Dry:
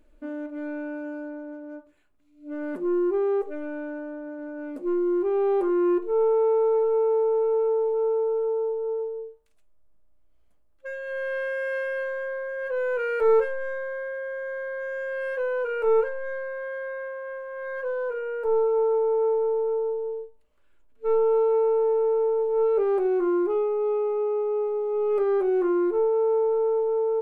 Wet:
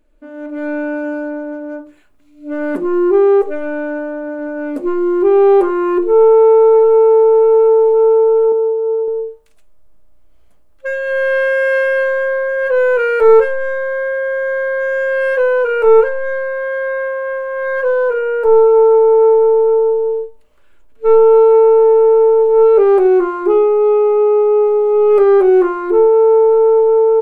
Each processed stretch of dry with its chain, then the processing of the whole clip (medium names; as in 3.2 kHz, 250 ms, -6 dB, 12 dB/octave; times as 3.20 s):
8.52–9.08 s: high-pass 310 Hz 6 dB/octave + distance through air 260 m + static phaser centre 1.1 kHz, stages 8
whole clip: hum notches 50/100/150/200/250/300/350 Hz; level rider gain up to 14.5 dB